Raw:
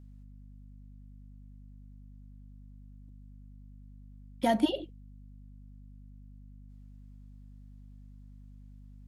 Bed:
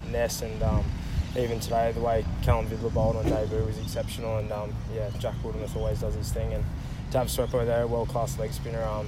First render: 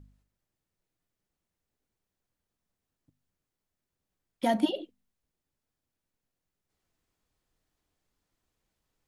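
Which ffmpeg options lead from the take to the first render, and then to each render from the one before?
-af "bandreject=f=50:t=h:w=4,bandreject=f=100:t=h:w=4,bandreject=f=150:t=h:w=4,bandreject=f=200:t=h:w=4,bandreject=f=250:t=h:w=4"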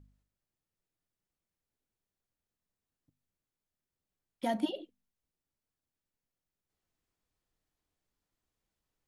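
-af "volume=-6dB"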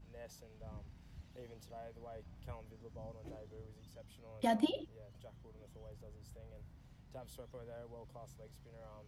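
-filter_complex "[1:a]volume=-25.5dB[a];[0:a][a]amix=inputs=2:normalize=0"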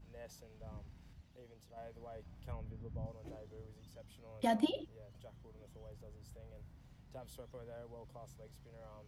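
-filter_complex "[0:a]asettb=1/sr,asplit=3[a][b][c];[a]atrim=end=2.524[d];[b]atrim=start=2.52:end=3.06,asetpts=PTS-STARTPTS,afade=t=in:d=0.004:c=qsin,afade=t=out:st=0.536:d=0.004:c=qsin,bass=f=250:g=10,treble=f=4k:g=-13[e];[c]atrim=start=3.056[f];[d][e]acrossfade=d=0.004:c1=hsin:c2=qsin[g];[g][f]acrossfade=d=0.004:c1=qsin:c2=hsin,asplit=3[h][i][j];[h]atrim=end=1.132[k];[i]atrim=start=1.128:end=1.772,asetpts=PTS-STARTPTS,volume=-5.5dB[l];[j]atrim=start=1.768[m];[k][l]acrossfade=d=0.004:c1=hsin:c2=hsin[n];[n][m]acrossfade=d=0.004:c1=hsin:c2=hsin"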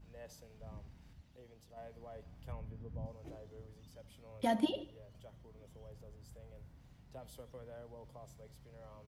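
-af "aecho=1:1:74|148|222|296:0.112|0.055|0.0269|0.0132"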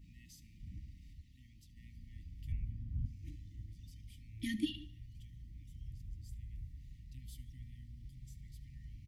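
-af "afftfilt=real='re*(1-between(b*sr/4096,330,1800))':imag='im*(1-between(b*sr/4096,330,1800))':win_size=4096:overlap=0.75,asubboost=boost=4.5:cutoff=100"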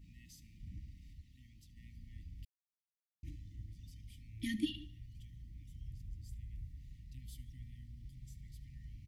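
-filter_complex "[0:a]asplit=3[a][b][c];[a]atrim=end=2.45,asetpts=PTS-STARTPTS,afade=t=out:st=2.446:d=0.004:c=hsin[d];[b]atrim=start=2.45:end=3.23,asetpts=PTS-STARTPTS,volume=0[e];[c]atrim=start=3.23,asetpts=PTS-STARTPTS,afade=t=in:d=0.004:c=hsin[f];[d][e][f]concat=n=3:v=0:a=1"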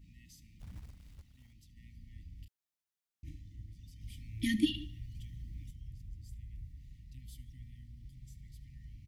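-filter_complex "[0:a]asettb=1/sr,asplit=3[a][b][c];[a]atrim=end=0.594[d];[b]atrim=start=0.59:end=1.53,asetpts=PTS-STARTPTS,afade=t=in:d=0.004:c=qsin,afade=t=out:st=0.936:d=0.004:c=qsin,acrusher=bits=4:mode=log:mix=0:aa=0.000001[e];[c]atrim=start=1.526[f];[d][e]acrossfade=d=0.004:c1=hsin:c2=qsin[g];[g][f]acrossfade=d=0.004:c1=qsin:c2=hsin,asettb=1/sr,asplit=3[h][i][j];[h]atrim=end=2.404[k];[i]atrim=start=2.4:end=3.41,asetpts=PTS-STARTPTS,afade=t=in:d=0.004:c=qsin,afade=t=out:st=1.006:d=0.004:c=qsin,asplit=2[l][m];[m]adelay=32,volume=-6.5dB[n];[l][n]amix=inputs=2:normalize=0,atrim=end_sample=44541[o];[j]atrim=start=3.406[p];[k][o]acrossfade=d=0.004:c1=hsin:c2=qsin[q];[q][p]acrossfade=d=0.004:c1=qsin:c2=hsin,asettb=1/sr,asplit=3[r][s][t];[r]atrim=end=4.014[u];[s]atrim=start=4.01:end=5.71,asetpts=PTS-STARTPTS,afade=t=in:d=0.004:c=qsin,afade=t=out:st=1.696:d=0.004:c=qsin,acontrast=66[v];[t]atrim=start=5.706[w];[u][v]acrossfade=d=0.004:c1=hsin:c2=qsin[x];[x][w]acrossfade=d=0.004:c1=qsin:c2=hsin"

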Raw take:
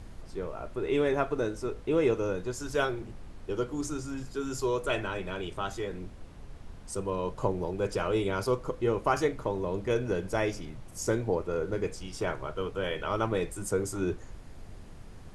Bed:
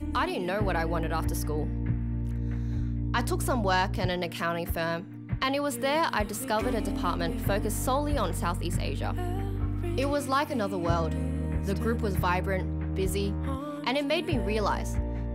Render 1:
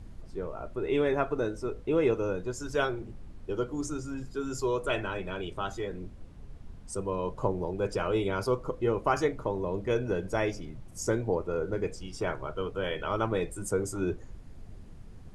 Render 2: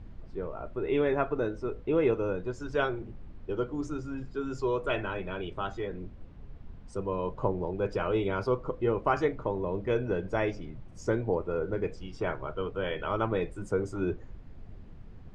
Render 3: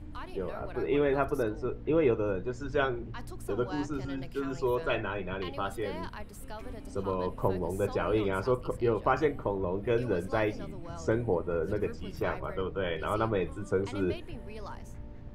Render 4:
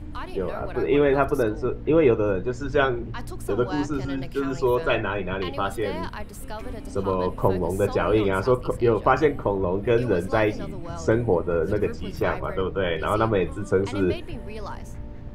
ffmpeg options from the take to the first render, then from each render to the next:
-af "afftdn=nr=7:nf=-47"
-af "lowpass=3.4k"
-filter_complex "[1:a]volume=-16dB[a];[0:a][a]amix=inputs=2:normalize=0"
-af "volume=7.5dB"

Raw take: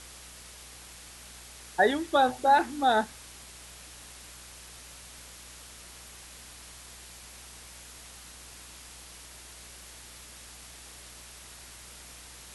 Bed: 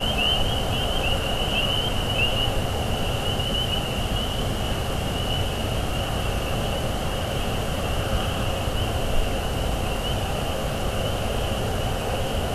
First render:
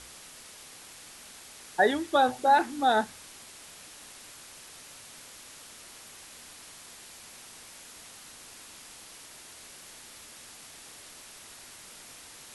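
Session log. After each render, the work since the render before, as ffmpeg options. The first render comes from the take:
-af "bandreject=f=60:t=h:w=4,bandreject=f=120:t=h:w=4,bandreject=f=180:t=h:w=4"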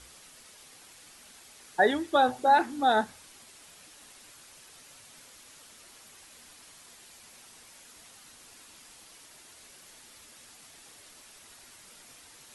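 -af "afftdn=nr=6:nf=-49"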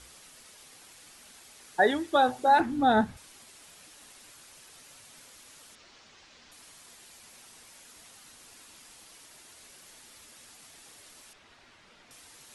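-filter_complex "[0:a]asettb=1/sr,asplit=3[a][b][c];[a]atrim=end=2.604[d];[b]atrim=start=2.6:end=3.17,asetpts=PTS-STARTPTS,afade=t=in:d=0.004:c=qsin,afade=t=out:st=0.566:d=0.004:c=qsin,bass=f=250:g=15,treble=f=4k:g=-7[e];[c]atrim=start=3.166[f];[d][e]acrossfade=d=0.004:c1=hsin:c2=qsin[g];[g][f]acrossfade=d=0.004:c1=qsin:c2=hsin,asettb=1/sr,asplit=3[h][i][j];[h]atrim=end=5.754[k];[i]atrim=start=5.75:end=6.52,asetpts=PTS-STARTPTS,afade=t=in:d=0.004:c=qsin,afade=t=out:st=0.766:d=0.004:c=qsin,lowpass=f=5.8k:w=0.5412,lowpass=f=5.8k:w=1.3066[l];[j]atrim=start=6.516[m];[k][l]acrossfade=d=0.004:c1=hsin:c2=qsin[n];[n][m]acrossfade=d=0.004:c1=qsin:c2=hsin,asettb=1/sr,asplit=3[o][p][q];[o]atrim=end=11.334[r];[p]atrim=start=11.33:end=12.11,asetpts=PTS-STARTPTS,afade=t=in:d=0.004:c=qsin,afade=t=out:st=0.776:d=0.004:c=qsin,lowpass=3.4k[s];[q]atrim=start=12.106[t];[r][s]acrossfade=d=0.004:c1=hsin:c2=qsin[u];[u][t]acrossfade=d=0.004:c1=qsin:c2=hsin"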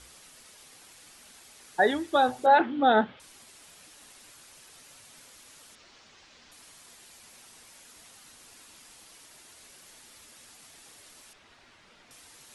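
-filter_complex "[0:a]asettb=1/sr,asplit=3[a][b][c];[a]atrim=end=2.464[d];[b]atrim=start=2.46:end=3.2,asetpts=PTS-STARTPTS,afade=t=in:d=0.004:c=qsin,afade=t=out:st=0.736:d=0.004:c=qsin,highpass=220,equalizer=f=390:t=q:w=4:g=4,equalizer=f=550:t=q:w=4:g=7,equalizer=f=1.3k:t=q:w=4:g=4,equalizer=f=2.1k:t=q:w=4:g=3,equalizer=f=3.2k:t=q:w=4:g=10,lowpass=f=3.7k:w=0.5412,lowpass=f=3.7k:w=1.3066[e];[c]atrim=start=3.196[f];[d][e]acrossfade=d=0.004:c1=hsin:c2=qsin[g];[g][f]acrossfade=d=0.004:c1=qsin:c2=hsin"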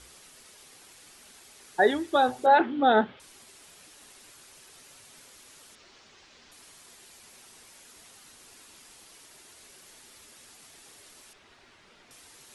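-af "equalizer=f=390:t=o:w=0.27:g=5.5"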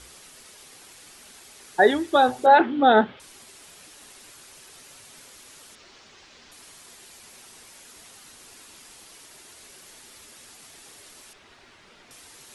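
-af "volume=4.5dB"

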